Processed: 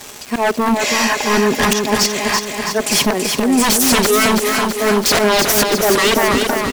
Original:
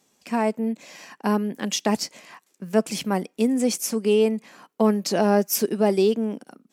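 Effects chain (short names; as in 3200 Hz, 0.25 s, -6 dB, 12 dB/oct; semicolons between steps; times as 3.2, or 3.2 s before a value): bell 190 Hz -11.5 dB 0.67 oct; comb 4.8 ms, depth 52%; auto swell 0.515 s; in parallel at -3 dB: sine folder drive 20 dB, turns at -13 dBFS; on the sum: crackle 440/s -26 dBFS; hard clip -16 dBFS, distortion -20 dB; on a send: feedback echo 0.33 s, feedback 59%, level -5 dB; on the sum: gain +5 dB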